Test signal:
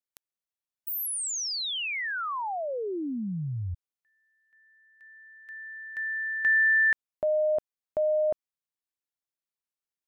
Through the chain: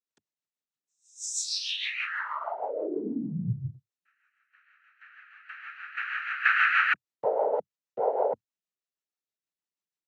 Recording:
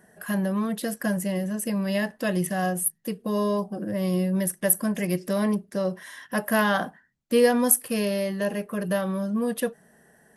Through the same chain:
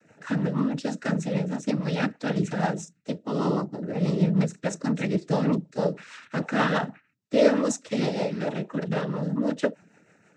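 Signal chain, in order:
cochlear-implant simulation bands 12
rotating-speaker cabinet horn 6.3 Hz
level +2 dB

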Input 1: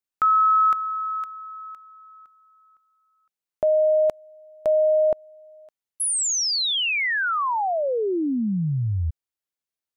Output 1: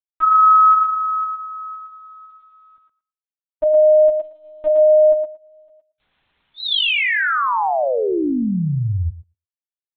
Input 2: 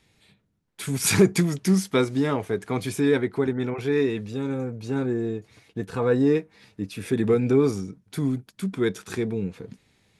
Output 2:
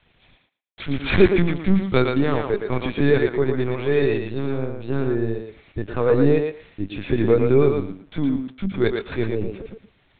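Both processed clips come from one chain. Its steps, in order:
bit-depth reduction 10 bits, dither none
linear-prediction vocoder at 8 kHz pitch kept
feedback echo with a high-pass in the loop 114 ms, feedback 16%, high-pass 310 Hz, level −4 dB
level +3.5 dB

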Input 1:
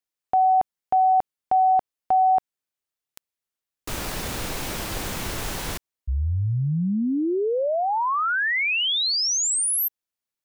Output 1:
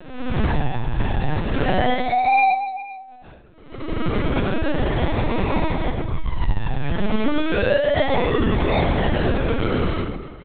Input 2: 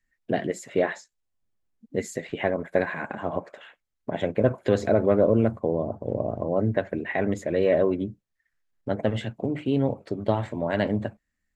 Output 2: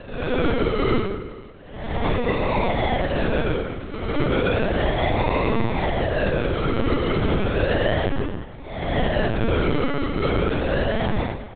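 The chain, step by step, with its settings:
peak hold with a rise ahead of every peak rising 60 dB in 0.77 s
low-pass filter 3,100 Hz 6 dB per octave
mains-hum notches 60/120 Hz
downward compressor 20 to 1, threshold −28 dBFS
sample-and-hold swept by an LFO 40×, swing 60% 0.33 Hz
on a send: single-tap delay 474 ms −20.5 dB
on the sum: dense smooth reverb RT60 1.1 s, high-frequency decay 0.75×, pre-delay 115 ms, DRR −8.5 dB
linear-prediction vocoder at 8 kHz pitch kept
level +3 dB

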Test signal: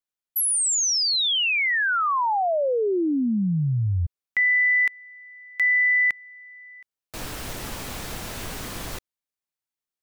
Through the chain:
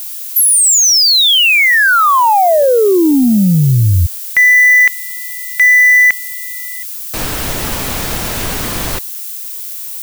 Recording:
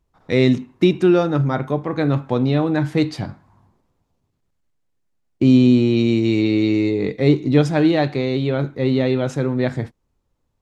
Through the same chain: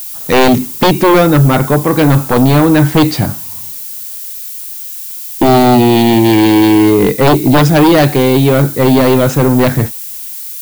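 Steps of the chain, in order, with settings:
sine wavefolder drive 12 dB, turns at −1.5 dBFS
background noise violet −23 dBFS
level −2 dB

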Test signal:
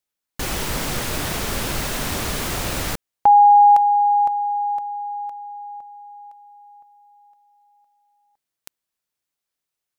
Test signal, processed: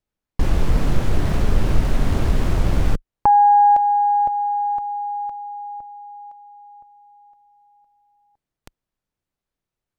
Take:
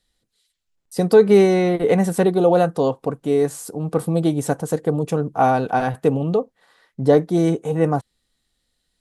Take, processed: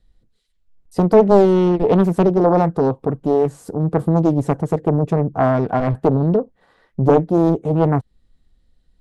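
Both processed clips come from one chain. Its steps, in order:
spectral tilt −3.5 dB per octave
in parallel at 0 dB: downward compressor, threshold −23 dBFS
on the sum: highs frequency-modulated by the lows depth 0.74 ms
level −4.5 dB

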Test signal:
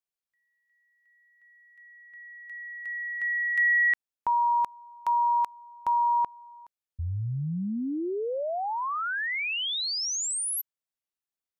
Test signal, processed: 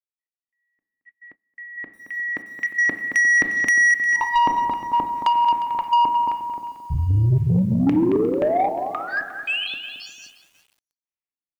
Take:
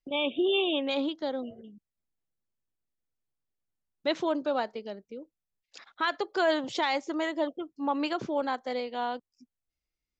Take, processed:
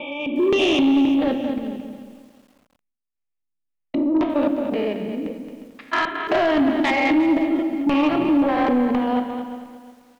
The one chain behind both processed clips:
spectrum averaged block by block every 200 ms
gate pattern "xxxxxxxxx.x.." 124 BPM −12 dB
auto-filter low-pass square 1.9 Hz 280–2,400 Hz
rectangular room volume 340 cubic metres, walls mixed, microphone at 0.47 metres
automatic gain control gain up to 12.5 dB
high-shelf EQ 6,400 Hz −6.5 dB
on a send: repeating echo 222 ms, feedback 33%, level −9.5 dB
on the sum: downward compressor 5 to 1, threshold −15 dBFS
soft clipping −16.5 dBFS
notch filter 1,500 Hz, Q 10
noise gate −50 dBFS, range −22 dB
feedback echo at a low word length 355 ms, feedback 35%, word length 8 bits, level −15 dB
level +4 dB

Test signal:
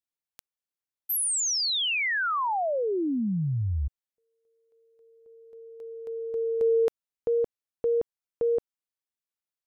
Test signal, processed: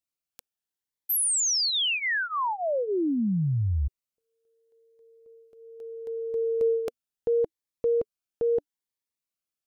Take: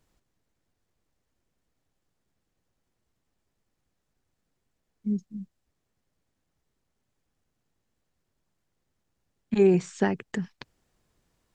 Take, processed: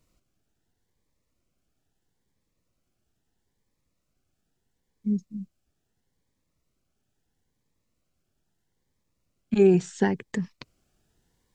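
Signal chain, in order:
phaser whose notches keep moving one way rising 0.76 Hz
level +2 dB

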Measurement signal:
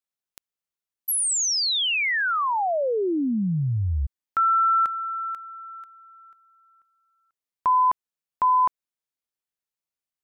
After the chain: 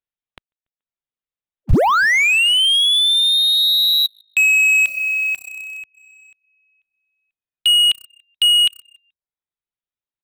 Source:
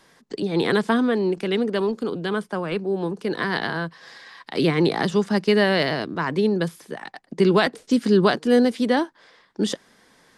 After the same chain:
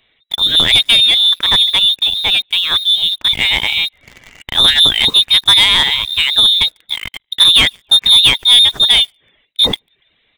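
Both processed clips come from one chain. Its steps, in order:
on a send: echo with shifted repeats 143 ms, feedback 42%, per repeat +32 Hz, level −23 dB
on the sum: voice inversion scrambler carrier 3,900 Hz
in parallel at −11 dB: bit reduction 6 bits
on the sum: reverb reduction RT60 0.51 s
leveller curve on the samples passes 2
low-shelf EQ 160 Hz +7 dB
level +2.5 dB

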